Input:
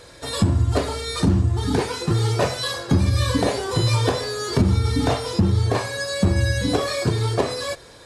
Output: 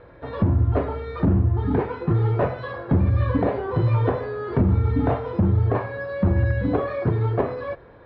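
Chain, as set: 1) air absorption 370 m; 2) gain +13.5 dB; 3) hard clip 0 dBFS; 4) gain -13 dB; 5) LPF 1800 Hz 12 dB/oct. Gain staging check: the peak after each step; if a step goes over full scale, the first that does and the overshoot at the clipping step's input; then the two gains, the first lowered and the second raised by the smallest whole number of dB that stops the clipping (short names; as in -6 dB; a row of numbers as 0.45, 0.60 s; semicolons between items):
-8.5, +5.0, 0.0, -13.0, -12.5 dBFS; step 2, 5.0 dB; step 2 +8.5 dB, step 4 -8 dB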